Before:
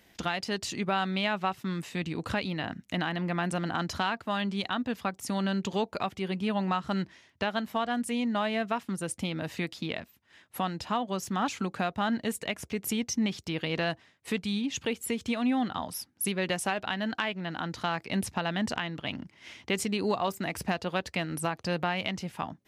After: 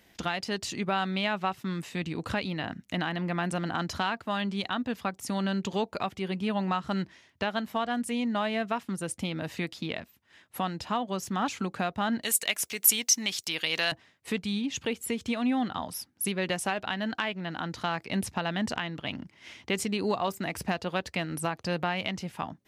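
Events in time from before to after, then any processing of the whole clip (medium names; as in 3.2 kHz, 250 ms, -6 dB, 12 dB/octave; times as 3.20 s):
12.23–13.92 s: tilt EQ +4.5 dB/octave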